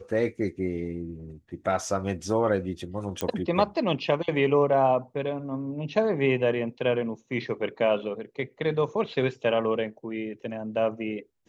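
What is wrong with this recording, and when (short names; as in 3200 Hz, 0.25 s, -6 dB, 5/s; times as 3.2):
3.21 pop -12 dBFS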